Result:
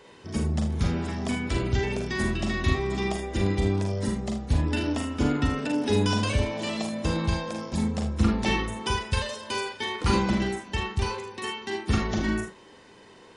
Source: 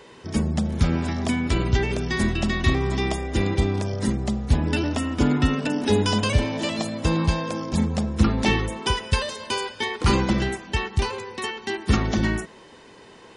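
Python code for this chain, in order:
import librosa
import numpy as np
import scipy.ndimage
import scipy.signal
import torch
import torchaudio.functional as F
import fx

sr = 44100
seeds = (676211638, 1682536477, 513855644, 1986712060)

y = fx.room_early_taps(x, sr, ms=(41, 51, 78), db=(-6.0, -8.0, -10.5))
y = F.gain(torch.from_numpy(y), -5.5).numpy()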